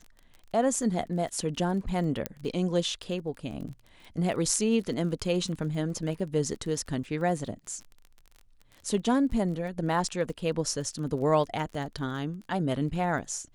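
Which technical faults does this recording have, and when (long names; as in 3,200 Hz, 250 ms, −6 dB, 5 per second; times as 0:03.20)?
surface crackle 22 per second −38 dBFS
0:02.26: click −13 dBFS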